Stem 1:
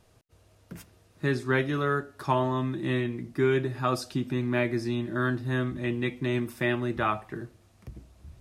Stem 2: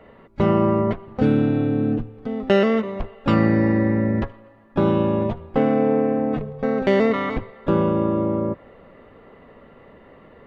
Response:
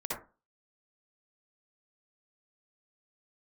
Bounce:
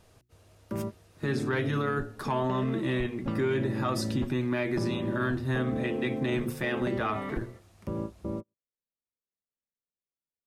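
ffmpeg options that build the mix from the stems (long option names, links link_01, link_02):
-filter_complex "[0:a]bandreject=frequency=60:width_type=h:width=6,bandreject=frequency=120:width_type=h:width=6,bandreject=frequency=180:width_type=h:width=6,bandreject=frequency=240:width_type=h:width=6,bandreject=frequency=300:width_type=h:width=6,bandreject=frequency=360:width_type=h:width=6,asoftclip=type=tanh:threshold=-15dB,volume=2.5dB,asplit=2[link_01][link_02];[1:a]acompressor=threshold=-20dB:ratio=6,lowshelf=frequency=340:gain=7,volume=-12.5dB[link_03];[link_02]apad=whole_len=461645[link_04];[link_03][link_04]sidechaingate=range=-51dB:threshold=-48dB:ratio=16:detection=peak[link_05];[link_01][link_05]amix=inputs=2:normalize=0,alimiter=limit=-20.5dB:level=0:latency=1:release=32"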